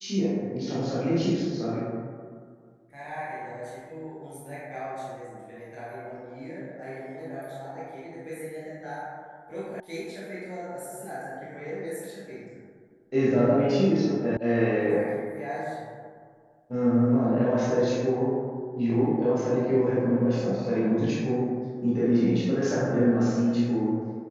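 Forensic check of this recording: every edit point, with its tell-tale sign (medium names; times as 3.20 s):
9.80 s: sound stops dead
14.37 s: sound stops dead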